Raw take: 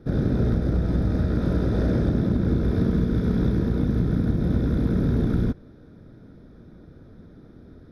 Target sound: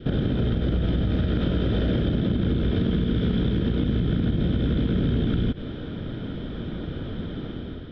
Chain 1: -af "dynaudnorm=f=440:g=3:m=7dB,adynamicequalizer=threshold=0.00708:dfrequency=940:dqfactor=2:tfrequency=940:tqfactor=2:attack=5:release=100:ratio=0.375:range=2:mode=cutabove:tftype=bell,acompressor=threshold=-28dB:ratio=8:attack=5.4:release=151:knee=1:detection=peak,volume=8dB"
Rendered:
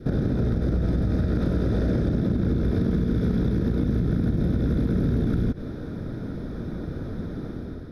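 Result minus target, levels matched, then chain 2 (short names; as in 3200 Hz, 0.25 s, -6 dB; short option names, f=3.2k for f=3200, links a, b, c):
4000 Hz band -11.0 dB
-af "dynaudnorm=f=440:g=3:m=7dB,adynamicequalizer=threshold=0.00708:dfrequency=940:dqfactor=2:tfrequency=940:tqfactor=2:attack=5:release=100:ratio=0.375:range=2:mode=cutabove:tftype=bell,lowpass=f=3.1k:t=q:w=14,acompressor=threshold=-28dB:ratio=8:attack=5.4:release=151:knee=1:detection=peak,volume=8dB"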